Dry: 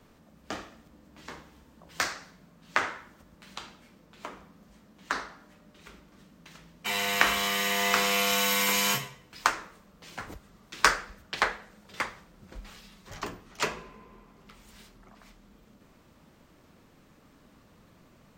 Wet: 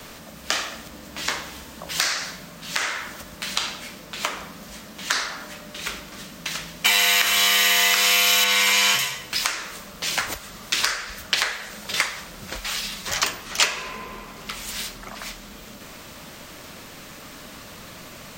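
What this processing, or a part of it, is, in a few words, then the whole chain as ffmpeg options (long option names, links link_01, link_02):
mastering chain: -filter_complex "[0:a]asettb=1/sr,asplit=3[link_01][link_02][link_03];[link_01]atrim=end=8.444[link_04];[link_02]atrim=start=8.44:end=8.99,asetpts=PTS-STARTPTS,afade=type=in:duration=0.004:curve=qsin,afade=type=out:start_time=0.546:duration=0.004:curve=qsin,aemphasis=mode=reproduction:type=50fm[link_05];[link_03]atrim=start=8.986[link_06];[link_04][link_05]acrossfade=duration=0.004:curve1=hsin:curve2=qsin[link_07];[link_07][link_06]acrossfade=duration=0.004:curve1=qsin:curve2=hsin,equalizer=frequency=600:width_type=o:width=0.41:gain=4,acrossover=split=590|1900|5500[link_08][link_09][link_10][link_11];[link_08]acompressor=threshold=-49dB:ratio=4[link_12];[link_09]acompressor=threshold=-42dB:ratio=4[link_13];[link_10]acompressor=threshold=-39dB:ratio=4[link_14];[link_11]acompressor=threshold=-47dB:ratio=4[link_15];[link_12][link_13][link_14][link_15]amix=inputs=4:normalize=0,acompressor=threshold=-46dB:ratio=1.5,asoftclip=type=tanh:threshold=-24dB,tiltshelf=frequency=1300:gain=-7,alimiter=level_in=22.5dB:limit=-1dB:release=50:level=0:latency=1,volume=-3dB"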